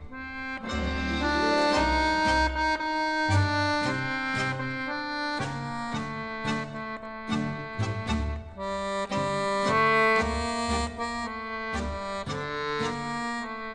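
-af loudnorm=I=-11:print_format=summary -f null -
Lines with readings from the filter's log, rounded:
Input Integrated:    -28.4 LUFS
Input True Peak:     -12.6 dBTP
Input LRA:             5.7 LU
Input Threshold:     -38.4 LUFS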